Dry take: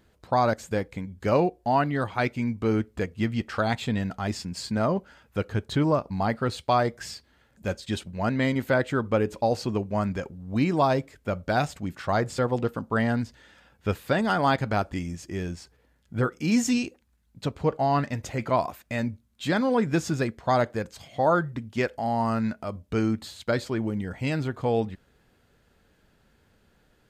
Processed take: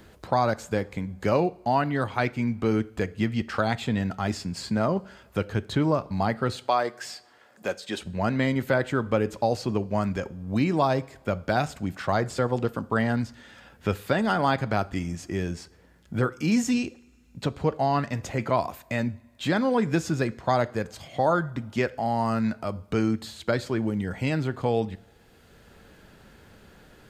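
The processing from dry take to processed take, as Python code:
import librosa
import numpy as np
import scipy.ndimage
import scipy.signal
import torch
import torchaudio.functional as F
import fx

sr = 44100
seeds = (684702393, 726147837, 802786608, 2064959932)

y = fx.highpass(x, sr, hz=360.0, slope=12, at=(6.55, 8.0))
y = fx.rev_double_slope(y, sr, seeds[0], early_s=0.5, late_s=1.8, knee_db=-18, drr_db=17.5)
y = fx.band_squash(y, sr, depth_pct=40)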